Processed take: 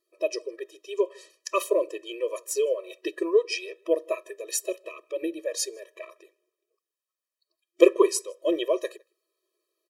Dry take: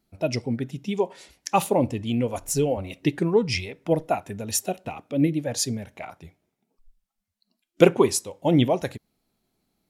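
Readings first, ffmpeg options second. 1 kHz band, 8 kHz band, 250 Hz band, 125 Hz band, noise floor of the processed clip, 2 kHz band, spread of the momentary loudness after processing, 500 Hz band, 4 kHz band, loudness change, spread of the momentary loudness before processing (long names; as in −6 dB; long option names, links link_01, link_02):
−8.0 dB, −3.0 dB, −8.0 dB, below −40 dB, below −85 dBFS, −3.0 dB, 15 LU, 0.0 dB, −3.5 dB, −2.5 dB, 11 LU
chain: -filter_complex "[0:a]asplit=2[link_01][link_02];[link_02]adelay=157.4,volume=-29dB,highshelf=frequency=4000:gain=-3.54[link_03];[link_01][link_03]amix=inputs=2:normalize=0,afftfilt=real='re*eq(mod(floor(b*sr/1024/330),2),1)':imag='im*eq(mod(floor(b*sr/1024/330),2),1)':win_size=1024:overlap=0.75"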